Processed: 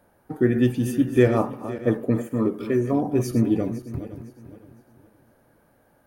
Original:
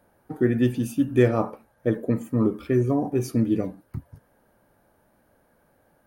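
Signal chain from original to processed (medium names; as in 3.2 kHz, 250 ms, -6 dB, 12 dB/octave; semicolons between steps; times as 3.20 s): backward echo that repeats 255 ms, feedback 55%, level -11.5 dB; 2.27–2.93 s: bass shelf 160 Hz -9.5 dB; trim +1.5 dB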